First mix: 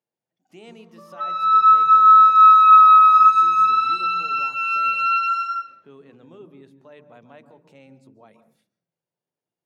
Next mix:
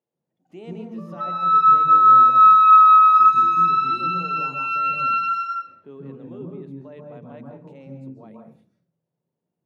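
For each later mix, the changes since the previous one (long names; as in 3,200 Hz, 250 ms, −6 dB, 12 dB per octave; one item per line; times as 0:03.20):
speech: send +10.5 dB
master: add spectral tilt −2.5 dB per octave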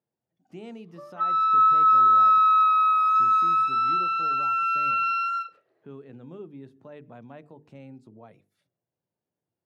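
background: add high-pass with resonance 450 Hz, resonance Q 4.8
reverb: off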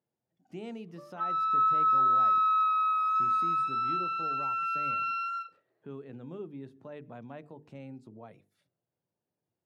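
background −7.0 dB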